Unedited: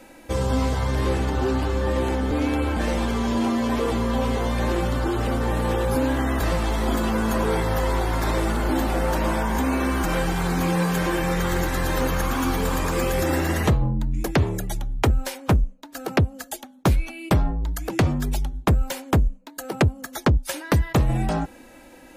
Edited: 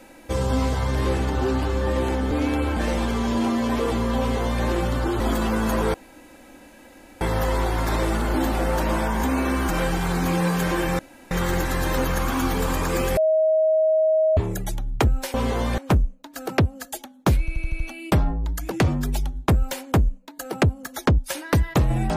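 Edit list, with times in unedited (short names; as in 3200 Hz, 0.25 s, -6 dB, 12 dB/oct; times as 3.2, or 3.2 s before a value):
4.19–4.63 copy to 15.37
5.2–6.82 cut
7.56 insert room tone 1.27 s
11.34 insert room tone 0.32 s
13.2–14.4 bleep 632 Hz -15.5 dBFS
16.99 stutter 0.08 s, 6 plays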